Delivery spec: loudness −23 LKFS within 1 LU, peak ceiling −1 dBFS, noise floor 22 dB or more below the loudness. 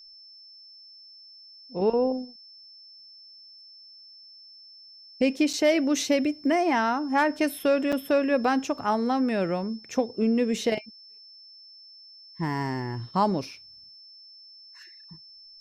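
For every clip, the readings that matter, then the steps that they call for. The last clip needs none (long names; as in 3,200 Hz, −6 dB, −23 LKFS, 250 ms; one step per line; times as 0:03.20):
number of dropouts 2; longest dropout 6.0 ms; interfering tone 5,300 Hz; level of the tone −47 dBFS; integrated loudness −25.5 LKFS; sample peak −11.5 dBFS; target loudness −23.0 LKFS
→ repair the gap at 0:05.53/0:07.92, 6 ms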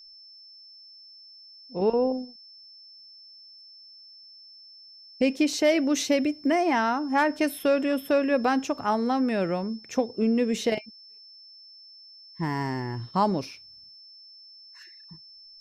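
number of dropouts 0; interfering tone 5,300 Hz; level of the tone −47 dBFS
→ notch filter 5,300 Hz, Q 30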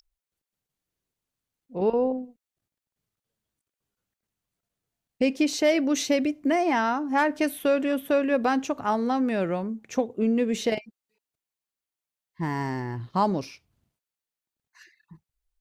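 interfering tone none found; integrated loudness −25.5 LKFS; sample peak −11.5 dBFS; target loudness −23.0 LKFS
→ level +2.5 dB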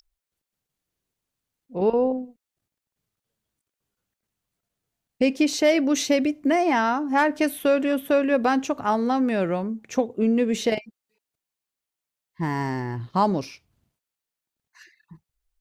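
integrated loudness −23.0 LKFS; sample peak −9.0 dBFS; background noise floor −87 dBFS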